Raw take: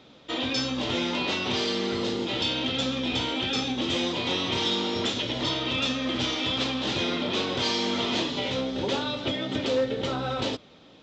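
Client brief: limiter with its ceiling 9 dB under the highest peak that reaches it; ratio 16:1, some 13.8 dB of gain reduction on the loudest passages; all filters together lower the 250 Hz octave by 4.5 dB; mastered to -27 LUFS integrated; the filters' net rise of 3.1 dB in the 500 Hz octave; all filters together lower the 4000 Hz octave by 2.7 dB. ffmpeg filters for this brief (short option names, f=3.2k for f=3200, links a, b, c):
-af "equalizer=f=250:t=o:g=-7.5,equalizer=f=500:t=o:g=5.5,equalizer=f=4k:t=o:g=-3.5,acompressor=threshold=-31dB:ratio=16,volume=12dB,alimiter=limit=-19dB:level=0:latency=1"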